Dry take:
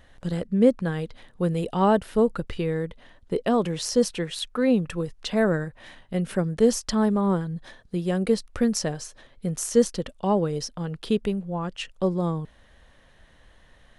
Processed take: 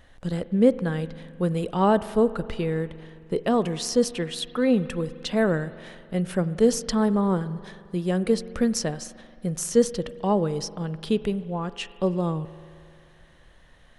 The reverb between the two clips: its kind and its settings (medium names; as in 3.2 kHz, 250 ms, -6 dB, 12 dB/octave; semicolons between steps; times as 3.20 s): spring tank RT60 2.4 s, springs 44 ms, chirp 80 ms, DRR 15 dB